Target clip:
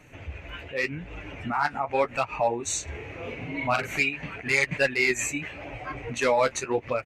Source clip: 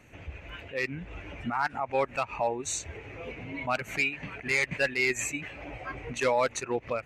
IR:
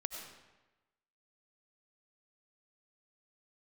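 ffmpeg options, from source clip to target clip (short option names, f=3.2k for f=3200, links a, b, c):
-filter_complex "[0:a]flanger=delay=6.5:depth=7.8:regen=-33:speed=0.85:shape=sinusoidal,asplit=3[a][b][c];[a]afade=t=out:st=2.87:d=0.02[d];[b]asplit=2[e][f];[f]adelay=42,volume=-4.5dB[g];[e][g]amix=inputs=2:normalize=0,afade=t=in:st=2.87:d=0.02,afade=t=out:st=3.98:d=0.02[h];[c]afade=t=in:st=3.98:d=0.02[i];[d][h][i]amix=inputs=3:normalize=0,volume=7dB"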